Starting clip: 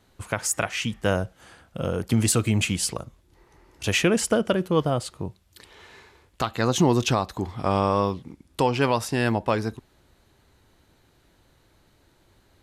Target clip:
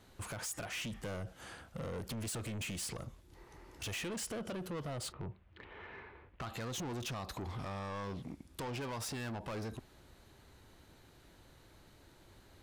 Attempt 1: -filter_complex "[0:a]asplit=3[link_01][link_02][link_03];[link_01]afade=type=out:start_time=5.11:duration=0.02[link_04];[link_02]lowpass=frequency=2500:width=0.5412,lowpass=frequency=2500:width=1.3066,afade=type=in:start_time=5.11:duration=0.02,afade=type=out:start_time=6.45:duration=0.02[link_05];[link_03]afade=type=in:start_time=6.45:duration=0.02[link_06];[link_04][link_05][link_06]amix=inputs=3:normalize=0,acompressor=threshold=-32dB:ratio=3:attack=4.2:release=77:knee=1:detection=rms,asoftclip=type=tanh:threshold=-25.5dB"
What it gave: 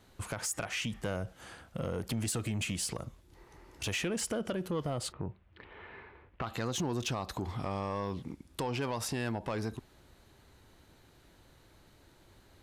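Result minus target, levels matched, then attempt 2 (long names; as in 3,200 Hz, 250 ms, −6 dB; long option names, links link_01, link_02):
soft clipping: distortion −12 dB
-filter_complex "[0:a]asplit=3[link_01][link_02][link_03];[link_01]afade=type=out:start_time=5.11:duration=0.02[link_04];[link_02]lowpass=frequency=2500:width=0.5412,lowpass=frequency=2500:width=1.3066,afade=type=in:start_time=5.11:duration=0.02,afade=type=out:start_time=6.45:duration=0.02[link_05];[link_03]afade=type=in:start_time=6.45:duration=0.02[link_06];[link_04][link_05][link_06]amix=inputs=3:normalize=0,acompressor=threshold=-32dB:ratio=3:attack=4.2:release=77:knee=1:detection=rms,asoftclip=type=tanh:threshold=-37.5dB"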